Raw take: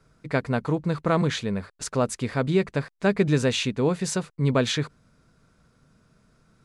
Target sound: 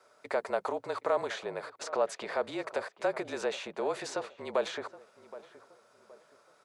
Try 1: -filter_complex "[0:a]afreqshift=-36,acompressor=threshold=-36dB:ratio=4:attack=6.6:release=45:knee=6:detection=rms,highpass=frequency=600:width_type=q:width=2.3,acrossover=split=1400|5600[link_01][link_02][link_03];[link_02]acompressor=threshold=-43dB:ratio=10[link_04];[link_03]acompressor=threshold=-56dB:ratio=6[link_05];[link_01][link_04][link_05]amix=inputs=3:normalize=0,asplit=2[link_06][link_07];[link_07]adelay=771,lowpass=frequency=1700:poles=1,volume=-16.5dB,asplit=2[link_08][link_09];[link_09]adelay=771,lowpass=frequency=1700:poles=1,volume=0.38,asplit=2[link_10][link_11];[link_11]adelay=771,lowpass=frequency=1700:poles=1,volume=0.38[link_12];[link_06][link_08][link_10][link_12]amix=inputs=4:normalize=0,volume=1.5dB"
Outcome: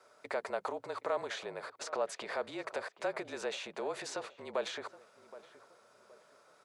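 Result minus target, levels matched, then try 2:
downward compressor: peak gain reduction +5.5 dB
-filter_complex "[0:a]afreqshift=-36,acompressor=threshold=-28.5dB:ratio=4:attack=6.6:release=45:knee=6:detection=rms,highpass=frequency=600:width_type=q:width=2.3,acrossover=split=1400|5600[link_01][link_02][link_03];[link_02]acompressor=threshold=-43dB:ratio=10[link_04];[link_03]acompressor=threshold=-56dB:ratio=6[link_05];[link_01][link_04][link_05]amix=inputs=3:normalize=0,asplit=2[link_06][link_07];[link_07]adelay=771,lowpass=frequency=1700:poles=1,volume=-16.5dB,asplit=2[link_08][link_09];[link_09]adelay=771,lowpass=frequency=1700:poles=1,volume=0.38,asplit=2[link_10][link_11];[link_11]adelay=771,lowpass=frequency=1700:poles=1,volume=0.38[link_12];[link_06][link_08][link_10][link_12]amix=inputs=4:normalize=0,volume=1.5dB"

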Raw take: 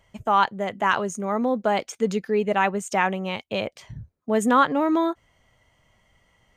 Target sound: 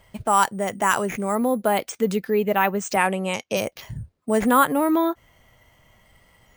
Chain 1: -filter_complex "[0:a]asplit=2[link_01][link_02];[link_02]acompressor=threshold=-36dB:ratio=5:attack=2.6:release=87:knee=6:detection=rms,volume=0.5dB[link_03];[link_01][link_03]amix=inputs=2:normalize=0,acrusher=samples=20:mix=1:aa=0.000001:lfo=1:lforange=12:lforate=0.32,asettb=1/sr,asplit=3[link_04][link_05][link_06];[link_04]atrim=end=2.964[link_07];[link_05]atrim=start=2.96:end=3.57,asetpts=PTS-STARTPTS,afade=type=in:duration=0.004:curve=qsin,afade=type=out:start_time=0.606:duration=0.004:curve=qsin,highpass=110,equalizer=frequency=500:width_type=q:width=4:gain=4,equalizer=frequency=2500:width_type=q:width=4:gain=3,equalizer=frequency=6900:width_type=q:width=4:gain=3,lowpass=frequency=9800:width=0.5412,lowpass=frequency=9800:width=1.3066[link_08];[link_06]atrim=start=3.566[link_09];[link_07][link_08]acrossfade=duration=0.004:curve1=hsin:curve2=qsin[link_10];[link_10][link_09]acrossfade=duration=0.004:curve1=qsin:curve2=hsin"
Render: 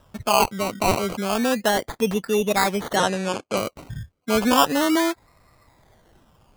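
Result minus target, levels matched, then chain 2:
sample-and-hold swept by an LFO: distortion +16 dB
-filter_complex "[0:a]asplit=2[link_01][link_02];[link_02]acompressor=threshold=-36dB:ratio=5:attack=2.6:release=87:knee=6:detection=rms,volume=0.5dB[link_03];[link_01][link_03]amix=inputs=2:normalize=0,acrusher=samples=4:mix=1:aa=0.000001:lfo=1:lforange=2.4:lforate=0.32,asettb=1/sr,asplit=3[link_04][link_05][link_06];[link_04]atrim=end=2.964[link_07];[link_05]atrim=start=2.96:end=3.57,asetpts=PTS-STARTPTS,afade=type=in:duration=0.004:curve=qsin,afade=type=out:start_time=0.606:duration=0.004:curve=qsin,highpass=110,equalizer=frequency=500:width_type=q:width=4:gain=4,equalizer=frequency=2500:width_type=q:width=4:gain=3,equalizer=frequency=6900:width_type=q:width=4:gain=3,lowpass=frequency=9800:width=0.5412,lowpass=frequency=9800:width=1.3066[link_08];[link_06]atrim=start=3.566[link_09];[link_07][link_08]acrossfade=duration=0.004:curve1=hsin:curve2=qsin[link_10];[link_10][link_09]acrossfade=duration=0.004:curve1=qsin:curve2=hsin"

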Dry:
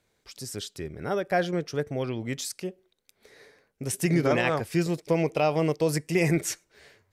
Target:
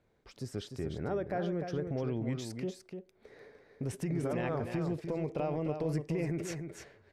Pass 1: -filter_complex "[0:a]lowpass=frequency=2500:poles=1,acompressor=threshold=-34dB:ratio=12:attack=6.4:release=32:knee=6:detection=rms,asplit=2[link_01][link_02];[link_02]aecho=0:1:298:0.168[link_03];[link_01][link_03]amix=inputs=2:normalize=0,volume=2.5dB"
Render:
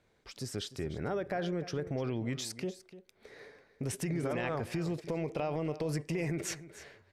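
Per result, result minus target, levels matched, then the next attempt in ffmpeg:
echo-to-direct −8.5 dB; 2,000 Hz band +4.0 dB
-filter_complex "[0:a]lowpass=frequency=2500:poles=1,acompressor=threshold=-34dB:ratio=12:attack=6.4:release=32:knee=6:detection=rms,asplit=2[link_01][link_02];[link_02]aecho=0:1:298:0.447[link_03];[link_01][link_03]amix=inputs=2:normalize=0,volume=2.5dB"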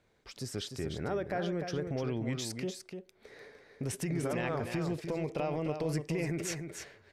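2,000 Hz band +4.0 dB
-filter_complex "[0:a]lowpass=frequency=870:poles=1,acompressor=threshold=-34dB:ratio=12:attack=6.4:release=32:knee=6:detection=rms,asplit=2[link_01][link_02];[link_02]aecho=0:1:298:0.447[link_03];[link_01][link_03]amix=inputs=2:normalize=0,volume=2.5dB"

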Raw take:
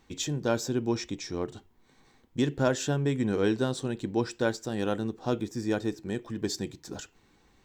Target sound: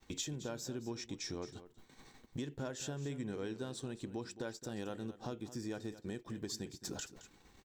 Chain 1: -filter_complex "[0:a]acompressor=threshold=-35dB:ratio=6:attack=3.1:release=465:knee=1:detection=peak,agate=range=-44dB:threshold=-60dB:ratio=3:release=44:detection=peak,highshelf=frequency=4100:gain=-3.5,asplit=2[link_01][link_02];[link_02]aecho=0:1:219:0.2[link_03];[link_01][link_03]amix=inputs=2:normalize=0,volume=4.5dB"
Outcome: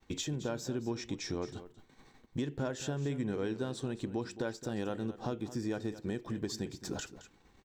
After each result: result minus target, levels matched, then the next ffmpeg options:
downward compressor: peak gain reduction −6 dB; 8,000 Hz band −5.0 dB
-filter_complex "[0:a]acompressor=threshold=-42.5dB:ratio=6:attack=3.1:release=465:knee=1:detection=peak,agate=range=-44dB:threshold=-60dB:ratio=3:release=44:detection=peak,highshelf=frequency=4100:gain=-3.5,asplit=2[link_01][link_02];[link_02]aecho=0:1:219:0.2[link_03];[link_01][link_03]amix=inputs=2:normalize=0,volume=4.5dB"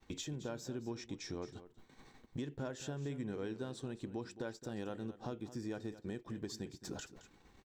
8,000 Hz band −5.0 dB
-filter_complex "[0:a]acompressor=threshold=-42.5dB:ratio=6:attack=3.1:release=465:knee=1:detection=peak,agate=range=-44dB:threshold=-60dB:ratio=3:release=44:detection=peak,highshelf=frequency=4100:gain=4.5,asplit=2[link_01][link_02];[link_02]aecho=0:1:219:0.2[link_03];[link_01][link_03]amix=inputs=2:normalize=0,volume=4.5dB"

